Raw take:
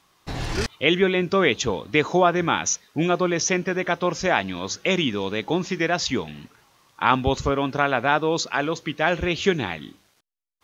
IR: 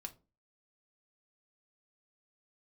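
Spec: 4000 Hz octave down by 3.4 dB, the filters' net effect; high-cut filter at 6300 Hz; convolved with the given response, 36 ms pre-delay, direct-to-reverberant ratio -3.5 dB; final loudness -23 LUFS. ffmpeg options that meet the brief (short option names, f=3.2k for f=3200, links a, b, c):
-filter_complex "[0:a]lowpass=6.3k,equalizer=f=4k:t=o:g=-4,asplit=2[a][b];[1:a]atrim=start_sample=2205,adelay=36[c];[b][c]afir=irnorm=-1:irlink=0,volume=7.5dB[d];[a][d]amix=inputs=2:normalize=0,volume=-5dB"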